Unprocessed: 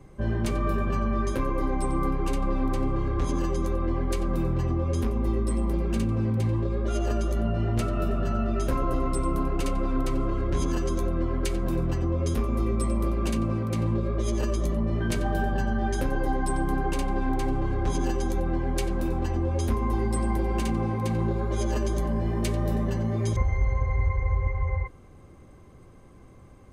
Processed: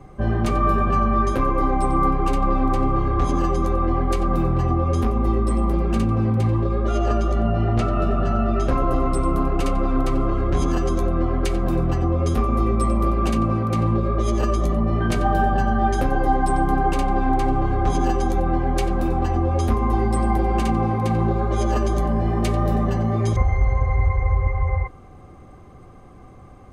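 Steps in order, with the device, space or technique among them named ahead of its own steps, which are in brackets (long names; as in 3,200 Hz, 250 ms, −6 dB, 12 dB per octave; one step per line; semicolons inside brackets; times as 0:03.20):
0:06.91–0:08.78: low-pass filter 6,900 Hz 12 dB per octave
inside a helmet (high-shelf EQ 5,100 Hz −6.5 dB; hollow resonant body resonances 750/1,200 Hz, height 12 dB, ringing for 60 ms)
level +5.5 dB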